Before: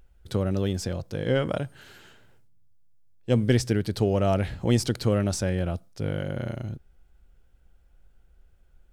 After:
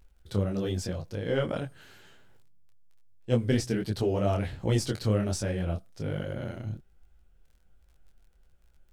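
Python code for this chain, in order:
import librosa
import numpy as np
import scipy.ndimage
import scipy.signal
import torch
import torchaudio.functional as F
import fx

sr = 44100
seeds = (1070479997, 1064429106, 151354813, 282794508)

y = fx.dmg_crackle(x, sr, seeds[0], per_s=16.0, level_db=-47.0)
y = fx.detune_double(y, sr, cents=44)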